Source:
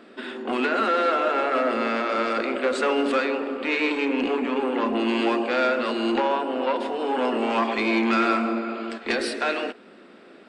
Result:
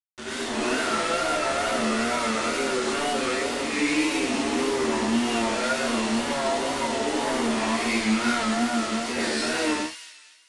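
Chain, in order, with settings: in parallel at -5 dB: saturation -24 dBFS, distortion -10 dB; on the sum: band-stop 1.7 kHz, Q 22; feedback comb 78 Hz, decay 0.52 s, harmonics all, mix 90%; companded quantiser 2-bit; gated-style reverb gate 160 ms rising, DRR -7 dB; resampled via 22.05 kHz; on a send: feedback echo behind a high-pass 233 ms, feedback 38%, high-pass 2.5 kHz, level -8 dB; on the sum: wow and flutter 66 cents; trim -6 dB

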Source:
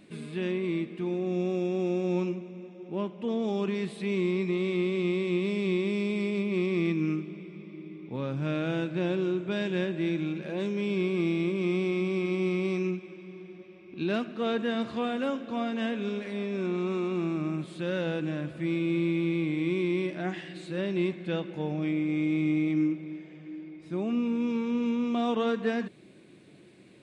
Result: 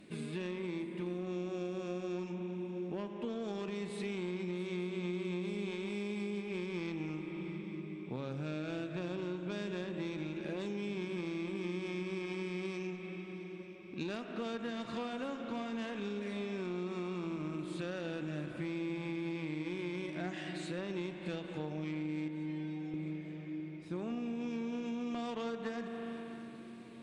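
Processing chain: in parallel at +2 dB: peak limiter -28.5 dBFS, peak gain reduction 11 dB; on the sum: Chebyshev shaper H 3 -15 dB, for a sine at -14.5 dBFS; dynamic bell 7 kHz, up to +6 dB, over -57 dBFS, Q 1.1; 22.28–22.94 s: inharmonic resonator 250 Hz, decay 0.52 s, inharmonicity 0.002; on a send at -8.5 dB: reverberation RT60 2.7 s, pre-delay 39 ms; on the sum: compression 6:1, threshold -34 dBFS, peak gain reduction 13.5 dB; shuffle delay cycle 884 ms, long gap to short 3:1, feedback 51%, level -18 dB; trim -2 dB

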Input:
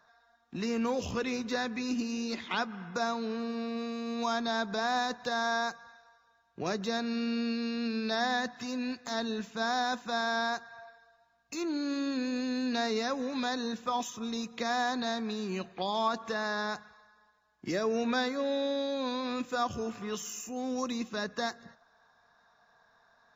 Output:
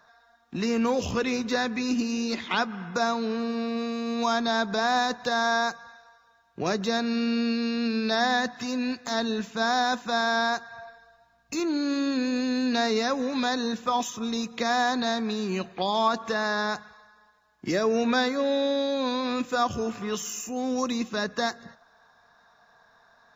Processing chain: 10.71–11.60 s: bass shelf 220 Hz +8 dB; trim +6 dB

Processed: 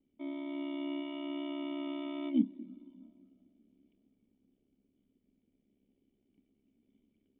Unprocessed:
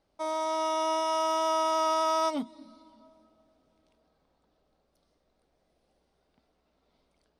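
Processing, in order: ring modulator 34 Hz; cascade formant filter i; small resonant body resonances 210/390/1900 Hz, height 7 dB; trim +8.5 dB

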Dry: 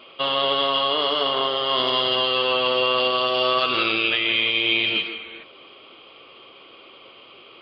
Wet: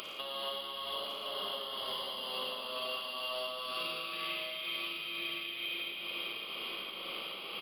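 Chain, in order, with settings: octave divider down 1 oct, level +3 dB; upward compressor, threshold -37 dBFS; tone controls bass -14 dB, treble +14 dB; Schroeder reverb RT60 3.2 s, DRR -5.5 dB; compression 16:1, threshold -29 dBFS, peak gain reduction 22.5 dB; tremolo 2.1 Hz, depth 38%; delay 1062 ms -6.5 dB; decimation joined by straight lines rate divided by 3×; trim -5 dB

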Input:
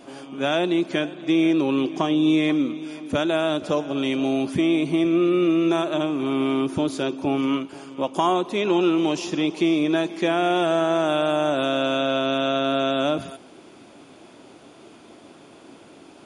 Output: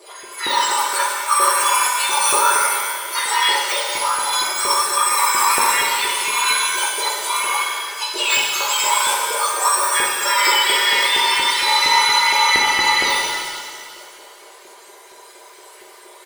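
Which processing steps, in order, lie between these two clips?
spectrum inverted on a logarithmic axis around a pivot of 1.8 kHz; elliptic high-pass 260 Hz; comb 5 ms, depth 89%; in parallel at -5.5 dB: saturation -19 dBFS, distortion -15 dB; on the sum: formant shift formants -3 st; LFO high-pass saw up 4.3 Hz 370–2200 Hz; pitch-shifted reverb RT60 1.9 s, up +7 st, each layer -8 dB, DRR -1.5 dB; trim -1.5 dB

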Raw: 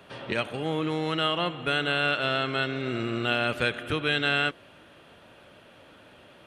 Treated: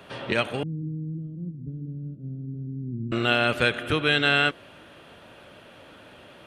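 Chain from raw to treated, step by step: 0.63–3.12 s: inverse Chebyshev low-pass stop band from 780 Hz, stop band 60 dB; trim +4 dB

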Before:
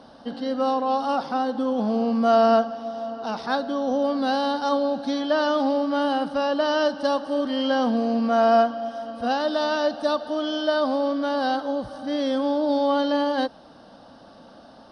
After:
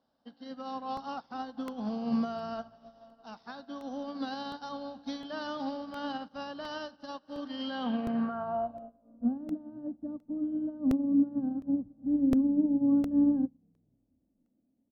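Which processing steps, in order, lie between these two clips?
low-pass sweep 5.4 kHz -> 280 Hz, 7.61–9.16 s; peak limiter -16 dBFS, peak gain reduction 12 dB; tone controls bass +1 dB, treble -7 dB; frequency-shifting echo 245 ms, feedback 56%, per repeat -60 Hz, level -20.5 dB; on a send at -21 dB: reverberation RT60 0.45 s, pre-delay 76 ms; on the sum: dynamic bell 490 Hz, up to -7 dB, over -39 dBFS, Q 1.7; crackling interface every 0.71 s, samples 64, repeat, from 0.97 s; upward expansion 2.5:1, over -38 dBFS; trim -1.5 dB

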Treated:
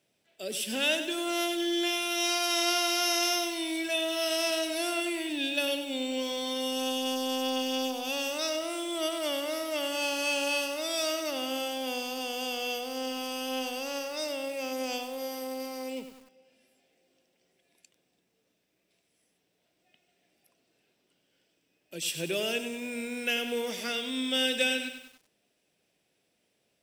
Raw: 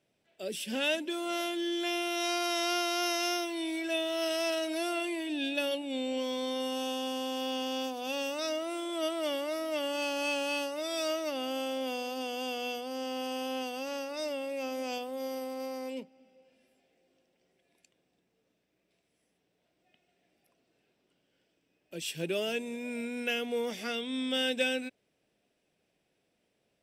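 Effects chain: high-pass 54 Hz 6 dB/octave; treble shelf 2.9 kHz +7.5 dB; bit-crushed delay 96 ms, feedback 55%, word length 8-bit, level -9 dB

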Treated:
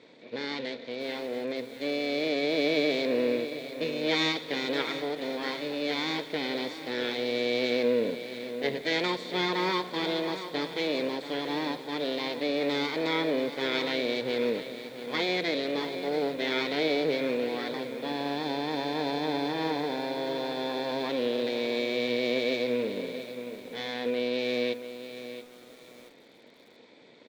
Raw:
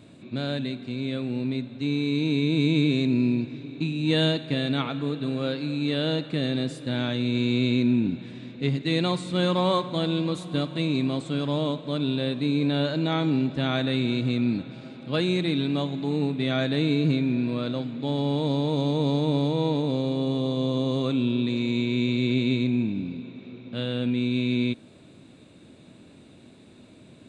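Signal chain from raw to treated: comb filter that takes the minimum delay 0.88 ms; cabinet simulation 430–5300 Hz, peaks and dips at 460 Hz +9 dB, 800 Hz -6 dB, 1.2 kHz -10 dB, 1.9 kHz +6 dB, 2.8 kHz -5 dB; on a send: delay 179 ms -22.5 dB; on the sum: bit-crushed delay 679 ms, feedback 35%, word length 8-bit, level -11 dB; trim +2 dB

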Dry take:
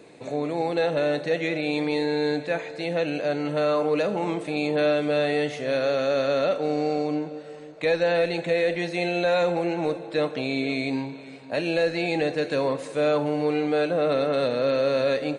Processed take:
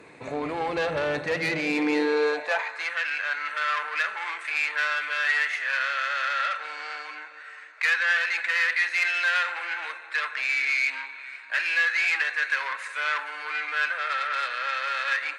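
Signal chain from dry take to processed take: high-order bell 1.5 kHz +9.5 dB; valve stage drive 20 dB, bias 0.55; high-pass sweep 63 Hz -> 1.6 kHz, 1.02–2.99 s

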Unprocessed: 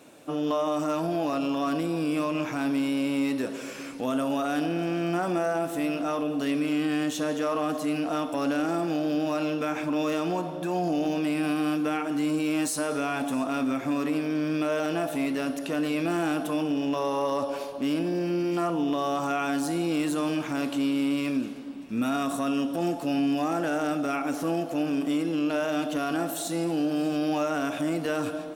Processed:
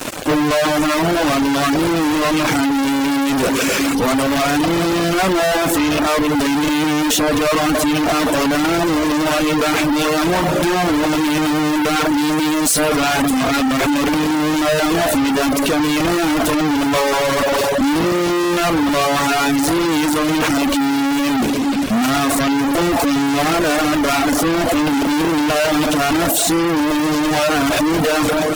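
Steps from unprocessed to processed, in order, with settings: fuzz box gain 51 dB, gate -50 dBFS; reverb removal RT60 0.77 s

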